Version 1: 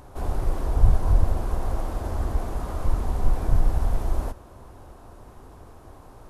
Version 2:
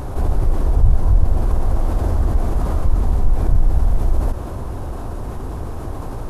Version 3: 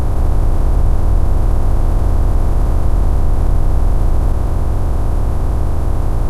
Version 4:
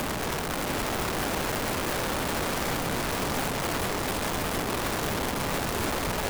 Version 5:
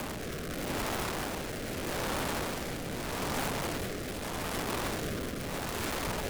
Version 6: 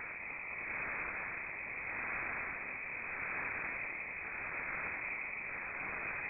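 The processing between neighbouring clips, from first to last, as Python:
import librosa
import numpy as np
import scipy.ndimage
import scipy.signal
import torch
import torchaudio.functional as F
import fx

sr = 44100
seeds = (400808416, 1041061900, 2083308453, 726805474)

y1 = fx.low_shelf(x, sr, hz=370.0, db=7.5)
y1 = fx.env_flatten(y1, sr, amount_pct=50)
y1 = y1 * librosa.db_to_amplitude(-5.0)
y2 = fx.bin_compress(y1, sr, power=0.2)
y2 = y2 * librosa.db_to_amplitude(-3.5)
y3 = (np.mod(10.0 ** (18.5 / 20.0) * y2 + 1.0, 2.0) - 1.0) / 10.0 ** (18.5 / 20.0)
y3 = y3 + 10.0 ** (-4.0 / 20.0) * np.pad(y3, (int(695 * sr / 1000.0), 0))[:len(y3)]
y3 = y3 * librosa.db_to_amplitude(-7.0)
y4 = fx.rotary(y3, sr, hz=0.8)
y4 = y4 * librosa.db_to_amplitude(-3.5)
y5 = y4 + 10.0 ** (-10.0 / 20.0) * np.pad(y4, (int(264 * sr / 1000.0), 0))[:len(y4)]
y5 = fx.freq_invert(y5, sr, carrier_hz=2500)
y5 = y5 * librosa.db_to_amplitude(-6.5)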